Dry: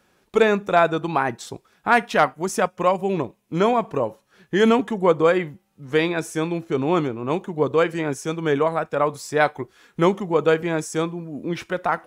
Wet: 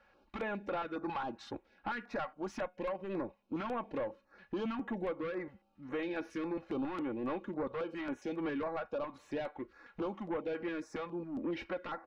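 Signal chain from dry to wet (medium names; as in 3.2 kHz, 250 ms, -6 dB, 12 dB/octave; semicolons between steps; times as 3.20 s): peaking EQ 140 Hz -8.5 dB 1.4 oct; band-stop 3.4 kHz, Q 11; comb 3.6 ms, depth 58%; compression 6:1, threshold -25 dBFS, peak gain reduction 14 dB; saturation -28.5 dBFS, distortion -9 dB; distance through air 280 m; feedback comb 720 Hz, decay 0.29 s, mix 30%; step-sequenced notch 7.3 Hz 300–7700 Hz; trim +1 dB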